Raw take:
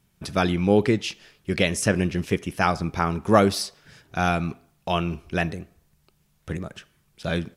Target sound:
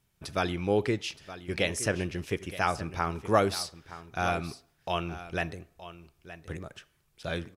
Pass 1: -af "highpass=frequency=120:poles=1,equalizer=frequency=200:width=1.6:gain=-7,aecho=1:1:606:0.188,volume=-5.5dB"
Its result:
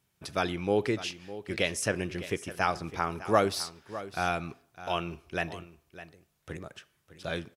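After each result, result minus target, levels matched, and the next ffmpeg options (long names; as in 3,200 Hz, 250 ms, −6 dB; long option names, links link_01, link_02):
echo 314 ms early; 125 Hz band −3.0 dB
-af "highpass=frequency=120:poles=1,equalizer=frequency=200:width=1.6:gain=-7,aecho=1:1:920:0.188,volume=-5.5dB"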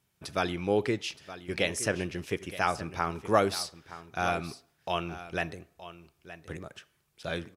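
125 Hz band −3.0 dB
-af "equalizer=frequency=200:width=1.6:gain=-7,aecho=1:1:920:0.188,volume=-5.5dB"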